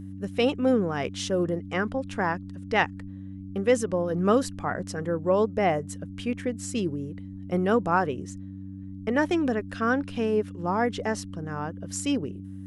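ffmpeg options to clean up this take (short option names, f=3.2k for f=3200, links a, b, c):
-af "bandreject=f=95.9:t=h:w=4,bandreject=f=191.8:t=h:w=4,bandreject=f=287.7:t=h:w=4"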